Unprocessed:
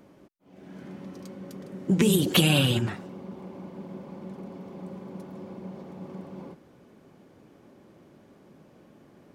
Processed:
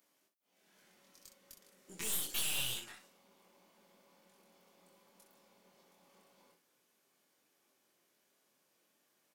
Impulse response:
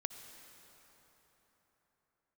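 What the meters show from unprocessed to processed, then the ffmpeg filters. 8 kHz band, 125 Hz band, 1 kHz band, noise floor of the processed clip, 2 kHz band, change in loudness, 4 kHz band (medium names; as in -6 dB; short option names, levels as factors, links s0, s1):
-4.5 dB, -31.0 dB, -17.5 dB, -77 dBFS, -14.0 dB, -11.5 dB, -12.5 dB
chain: -filter_complex "[0:a]aderivative,asplit=2[s0][s1];[s1]acrusher=bits=3:mix=0:aa=0.000001,volume=0.316[s2];[s0][s2]amix=inputs=2:normalize=0,aeval=exprs='(tanh(56.2*val(0)+0.7)-tanh(0.7))/56.2':c=same,aecho=1:1:23|63:0.708|0.398"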